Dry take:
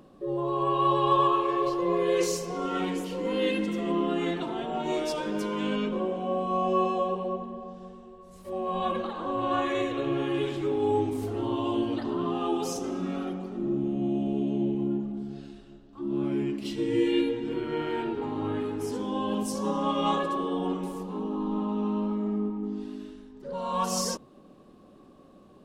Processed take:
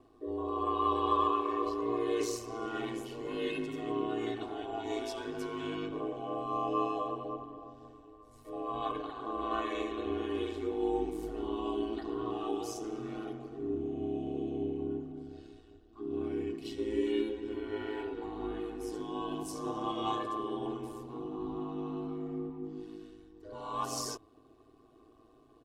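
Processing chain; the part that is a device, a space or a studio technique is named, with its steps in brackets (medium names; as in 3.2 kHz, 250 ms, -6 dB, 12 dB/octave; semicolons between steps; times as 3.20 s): ring-modulated robot voice (ring modulator 55 Hz; comb 2.7 ms, depth 87%); trim -7 dB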